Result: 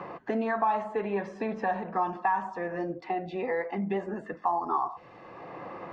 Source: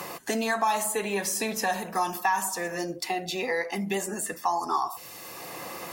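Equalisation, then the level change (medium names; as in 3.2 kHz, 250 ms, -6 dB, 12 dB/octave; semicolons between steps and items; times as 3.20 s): low-pass 1.5 kHz 12 dB/octave; distance through air 110 m; 0.0 dB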